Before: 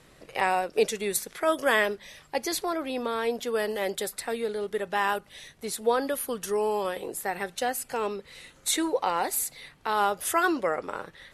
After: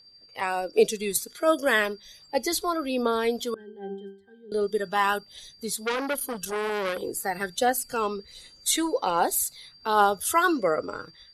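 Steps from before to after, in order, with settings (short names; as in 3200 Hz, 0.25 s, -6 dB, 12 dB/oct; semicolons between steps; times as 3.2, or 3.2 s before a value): AGC gain up to 9.5 dB; spectral noise reduction 12 dB; whine 4700 Hz -45 dBFS; phaser 1.3 Hz, delay 1 ms, feedback 35%; 3.54–4.52 octave resonator G, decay 0.42 s; 5.81–7.02 core saturation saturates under 2200 Hz; gain -6.5 dB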